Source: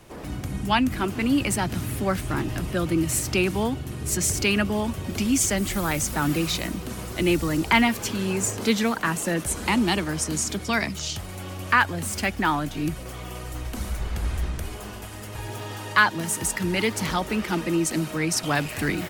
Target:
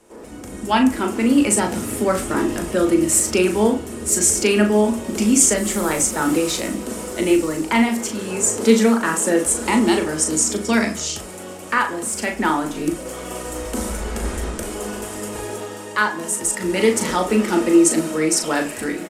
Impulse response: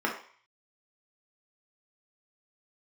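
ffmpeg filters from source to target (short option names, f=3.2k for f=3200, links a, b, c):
-filter_complex "[0:a]asplit=2[a][b];[b]adelay=38,volume=-7dB[c];[a][c]amix=inputs=2:normalize=0,dynaudnorm=f=150:g=7:m=11.5dB,asplit=2[d][e];[1:a]atrim=start_sample=2205[f];[e][f]afir=irnorm=-1:irlink=0,volume=-11.5dB[g];[d][g]amix=inputs=2:normalize=0,aresample=32000,aresample=44100,equalizer=f=125:t=o:w=1:g=-6,equalizer=f=250:t=o:w=1:g=6,equalizer=f=500:t=o:w=1:g=7,equalizer=f=8k:t=o:w=1:g=12,volume=-11dB"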